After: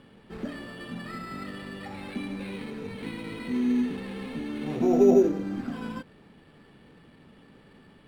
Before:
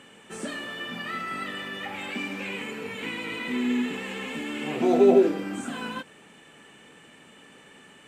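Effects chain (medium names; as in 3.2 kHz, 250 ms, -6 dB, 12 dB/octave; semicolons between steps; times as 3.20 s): sample-and-hold 7×; RIAA curve playback; trim -5.5 dB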